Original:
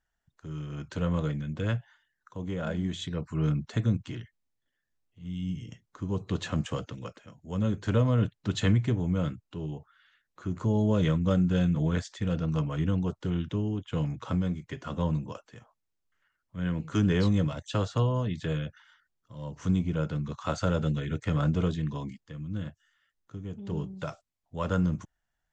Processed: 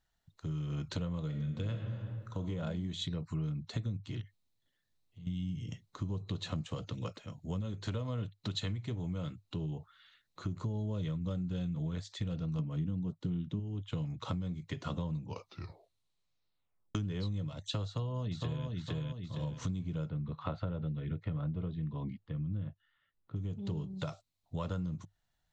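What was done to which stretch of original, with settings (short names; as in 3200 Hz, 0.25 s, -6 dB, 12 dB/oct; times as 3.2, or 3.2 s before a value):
1.27–2.44 reverb throw, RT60 1.2 s, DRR 3.5 dB
4.21–5.27 compressor 2.5:1, threshold -55 dBFS
7.61–9.44 low shelf 390 Hz -6 dB
12.59–13.6 bell 210 Hz +10.5 dB 1.5 oct
15.17 tape stop 1.78 s
17.85–18.66 echo throw 0.46 s, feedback 30%, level -4.5 dB
20.09–23.36 air absorption 440 m
whole clip: thirty-one-band EQ 100 Hz +8 dB, 160 Hz +5 dB, 1600 Hz -6 dB, 4000 Hz +10 dB; compressor 8:1, threshold -35 dBFS; gain +1.5 dB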